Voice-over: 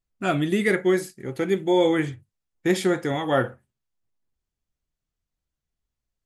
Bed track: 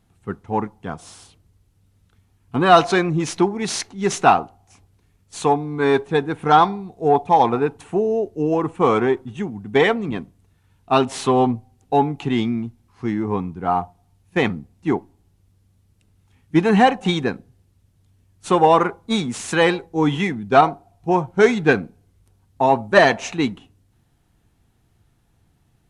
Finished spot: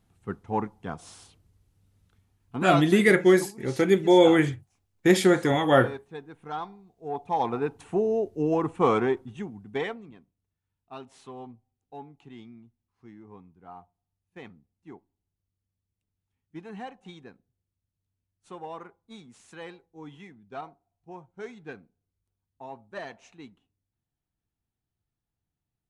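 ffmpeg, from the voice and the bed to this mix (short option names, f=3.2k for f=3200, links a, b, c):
-filter_complex "[0:a]adelay=2400,volume=2.5dB[a];[1:a]volume=10.5dB,afade=t=out:st=2.01:d=0.97:silence=0.16788,afade=t=in:st=7.01:d=0.99:silence=0.158489,afade=t=out:st=8.86:d=1.29:silence=0.0944061[b];[a][b]amix=inputs=2:normalize=0"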